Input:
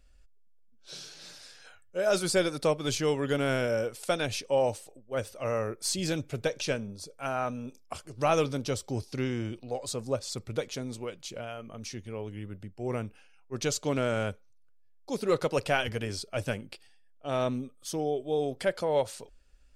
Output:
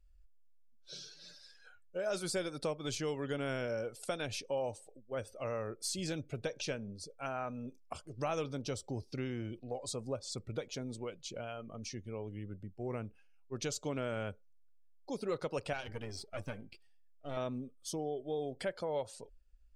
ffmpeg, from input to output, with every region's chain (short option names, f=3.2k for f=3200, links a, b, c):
-filter_complex "[0:a]asettb=1/sr,asplit=3[a][b][c];[a]atrim=end=15.734[d];[b]atrim=start=15.73:end=17.37,asetpts=PTS-STARTPTS,afade=t=in:d=0.004:c=qsin,afade=t=out:st=1.636:d=0.004:c=qsin,aeval=exprs='if(lt(val(0),0),0.251*val(0),val(0))':c=same,bandreject=f=391.2:t=h:w=4,bandreject=f=782.4:t=h:w=4,bandreject=f=1.1736k:t=h:w=4,bandreject=f=1.5648k:t=h:w=4,bandreject=f=1.956k:t=h:w=4,bandreject=f=2.3472k:t=h:w=4[e];[c]atrim=start=17.366[f];[d][e]acrossfade=d=0.004:c1=hsin:c2=qsin[g];[g][f]acrossfade=d=0.004:c1=qsin:c2=hsin,afftdn=nr=14:nf=-49,acompressor=threshold=-35dB:ratio=2,volume=-3dB"